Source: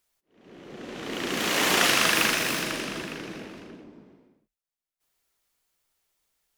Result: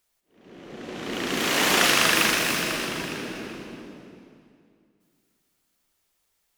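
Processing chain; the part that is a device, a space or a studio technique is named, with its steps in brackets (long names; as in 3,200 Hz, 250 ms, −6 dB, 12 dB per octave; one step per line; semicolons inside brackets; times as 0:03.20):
saturated reverb return (on a send at −4 dB: convolution reverb RT60 2.2 s, pre-delay 90 ms + soft clipping −25 dBFS, distortion −9 dB)
on the sum: level +1.5 dB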